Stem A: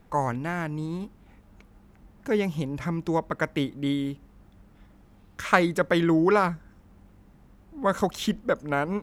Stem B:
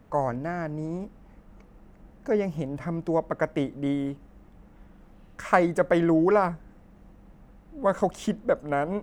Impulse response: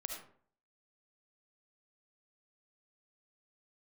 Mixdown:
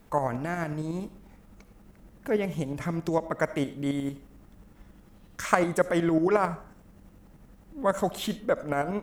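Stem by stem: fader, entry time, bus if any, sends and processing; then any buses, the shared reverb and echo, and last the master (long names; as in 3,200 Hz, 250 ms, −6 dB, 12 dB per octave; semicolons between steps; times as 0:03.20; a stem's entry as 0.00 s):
−4.0 dB, 0.00 s, send −7.5 dB, downward compressor, threshold −28 dBFS, peak gain reduction 14 dB; automatic ducking −6 dB, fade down 0.20 s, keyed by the second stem
−2.5 dB, 0.00 s, send −12 dB, shaped tremolo saw up 11 Hz, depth 75%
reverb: on, RT60 0.50 s, pre-delay 30 ms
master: high-shelf EQ 3,900 Hz +10.5 dB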